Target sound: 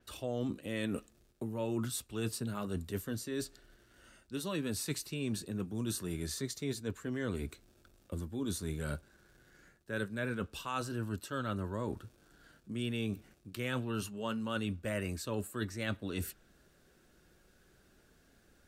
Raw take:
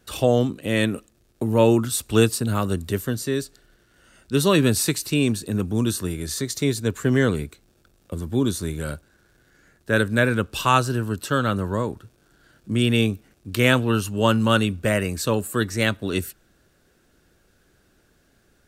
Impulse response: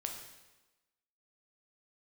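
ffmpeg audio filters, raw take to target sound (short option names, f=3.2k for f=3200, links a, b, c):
-af "areverse,acompressor=threshold=-29dB:ratio=6,areverse,flanger=delay=3.1:depth=2.4:regen=-69:speed=0.26:shape=sinusoidal,adynamicequalizer=threshold=0.00178:dfrequency=5600:dqfactor=0.7:tfrequency=5600:tqfactor=0.7:attack=5:release=100:ratio=0.375:range=2:mode=cutabove:tftype=highshelf"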